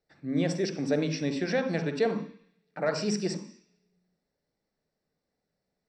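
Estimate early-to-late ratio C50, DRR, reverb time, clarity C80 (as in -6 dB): 7.5 dB, 6.0 dB, 0.50 s, 12.0 dB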